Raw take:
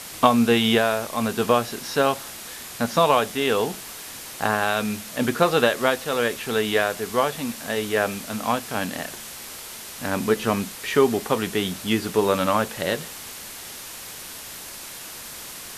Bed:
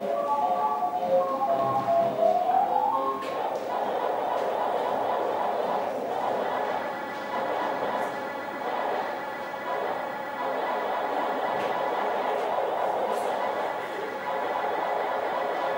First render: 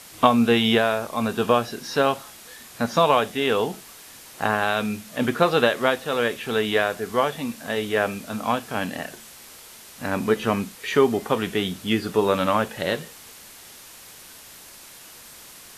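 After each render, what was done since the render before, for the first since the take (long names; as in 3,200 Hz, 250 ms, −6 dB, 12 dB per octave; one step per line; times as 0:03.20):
noise reduction from a noise print 7 dB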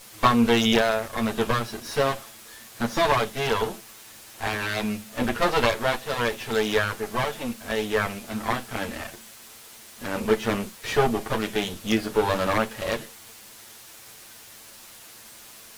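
lower of the sound and its delayed copy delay 9 ms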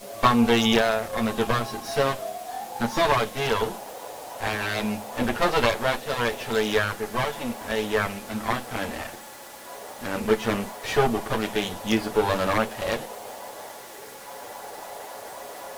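mix in bed −11.5 dB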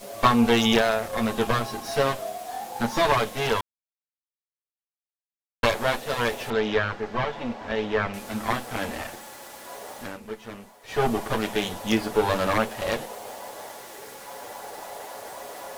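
0:03.61–0:05.63: silence
0:06.50–0:08.14: high-frequency loss of the air 180 metres
0:09.97–0:11.08: duck −14.5 dB, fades 0.21 s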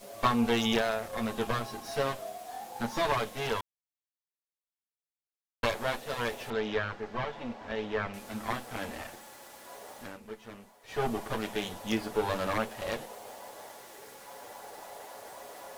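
level −7.5 dB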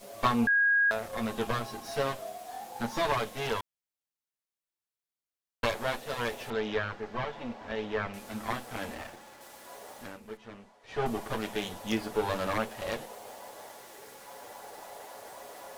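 0:00.47–0:00.91: beep over 1,640 Hz −21 dBFS
0:08.94–0:09.41: slack as between gear wheels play −48 dBFS
0:10.37–0:11.06: high-frequency loss of the air 72 metres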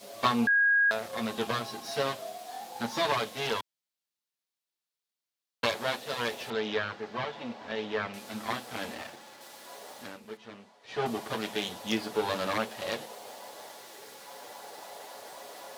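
high-pass filter 130 Hz 12 dB per octave
parametric band 4,100 Hz +6 dB 1.1 octaves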